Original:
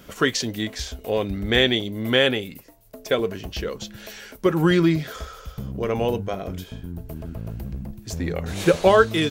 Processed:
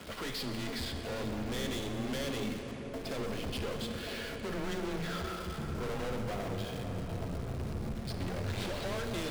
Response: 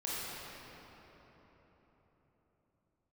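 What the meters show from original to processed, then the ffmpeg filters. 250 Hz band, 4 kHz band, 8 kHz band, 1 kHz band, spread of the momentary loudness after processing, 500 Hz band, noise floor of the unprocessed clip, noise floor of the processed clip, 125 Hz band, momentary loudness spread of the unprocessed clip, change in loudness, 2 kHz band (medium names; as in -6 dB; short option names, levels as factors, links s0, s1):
-13.0 dB, -14.0 dB, -10.5 dB, -13.5 dB, 3 LU, -16.0 dB, -47 dBFS, -42 dBFS, -10.0 dB, 18 LU, -15.0 dB, -15.0 dB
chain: -filter_complex "[0:a]bandreject=f=1800:w=22,acompressor=threshold=0.1:ratio=6,aresample=11025,acrusher=bits=3:mode=log:mix=0:aa=0.000001,aresample=44100,aeval=exprs='(tanh(79.4*val(0)+0.45)-tanh(0.45))/79.4':c=same,acrusher=bits=9:dc=4:mix=0:aa=0.000001,afreqshift=16,asplit=2[s0][s1];[1:a]atrim=start_sample=2205,asetrate=22932,aresample=44100[s2];[s1][s2]afir=irnorm=-1:irlink=0,volume=0.299[s3];[s0][s3]amix=inputs=2:normalize=0"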